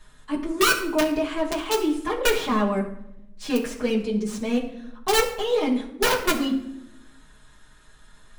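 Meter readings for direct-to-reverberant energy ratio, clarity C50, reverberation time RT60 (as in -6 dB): -5.0 dB, 9.0 dB, 0.80 s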